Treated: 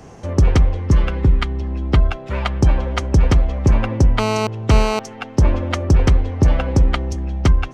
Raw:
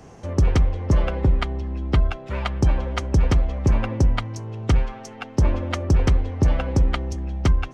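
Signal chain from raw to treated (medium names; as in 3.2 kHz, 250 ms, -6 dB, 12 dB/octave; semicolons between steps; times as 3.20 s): 0.80–1.60 s: peaking EQ 640 Hz -9.5 dB 0.84 oct; 4.19–4.99 s: mobile phone buzz -24 dBFS; trim +4.5 dB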